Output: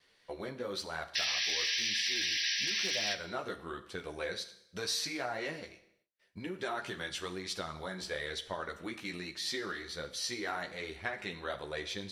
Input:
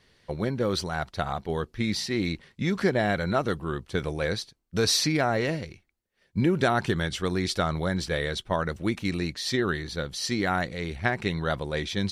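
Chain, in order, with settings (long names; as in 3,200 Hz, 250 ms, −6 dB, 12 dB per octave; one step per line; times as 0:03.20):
sound drawn into the spectrogram noise, 0:01.15–0:03.14, 1,600–6,000 Hz −20 dBFS
gain into a clipping stage and back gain 11 dB
multi-voice chorus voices 2, 1 Hz, delay 13 ms, depth 3.3 ms
downward compressor 4 to 1, threshold −30 dBFS, peak gain reduction 10.5 dB
high-shelf EQ 3,500 Hz +11 dB
four-comb reverb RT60 0.77 s, combs from 27 ms, DRR 11.5 dB
noise gate with hold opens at −59 dBFS
bass and treble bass −12 dB, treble −8 dB
level −3.5 dB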